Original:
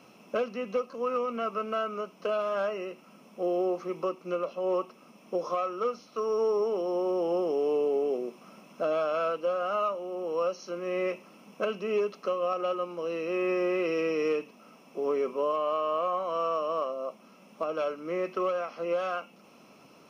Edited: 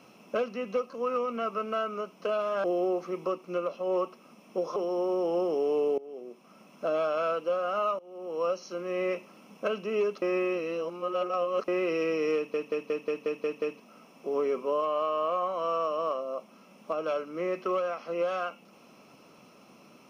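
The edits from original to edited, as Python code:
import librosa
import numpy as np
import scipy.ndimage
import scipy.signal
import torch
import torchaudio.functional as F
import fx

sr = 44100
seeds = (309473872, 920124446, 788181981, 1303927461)

y = fx.edit(x, sr, fx.cut(start_s=2.64, length_s=0.77),
    fx.cut(start_s=5.53, length_s=1.2),
    fx.fade_in_from(start_s=7.95, length_s=0.97, floor_db=-22.0),
    fx.fade_in_from(start_s=9.96, length_s=0.47, floor_db=-20.0),
    fx.reverse_span(start_s=12.19, length_s=1.46),
    fx.stutter(start_s=14.33, slice_s=0.18, count=8), tone=tone)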